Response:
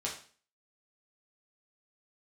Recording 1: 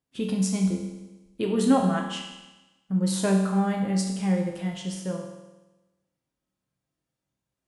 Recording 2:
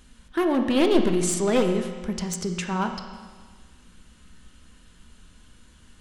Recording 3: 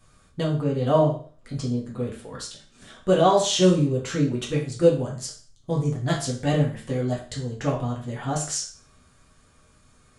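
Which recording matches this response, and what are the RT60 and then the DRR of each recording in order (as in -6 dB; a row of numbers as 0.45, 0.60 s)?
3; 1.1, 1.6, 0.40 s; 0.5, 4.5, -4.0 dB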